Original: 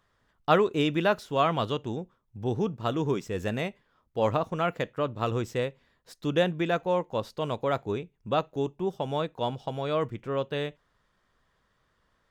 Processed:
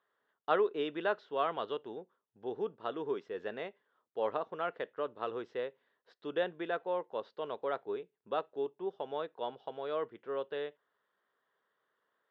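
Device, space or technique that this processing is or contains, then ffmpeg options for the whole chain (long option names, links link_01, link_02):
phone earpiece: -af "highpass=390,equalizer=frequency=420:width_type=q:width=4:gain=6,equalizer=frequency=1600:width_type=q:width=4:gain=3,equalizer=frequency=2400:width_type=q:width=4:gain=-7,lowpass=frequency=3600:width=0.5412,lowpass=frequency=3600:width=1.3066,volume=-8dB"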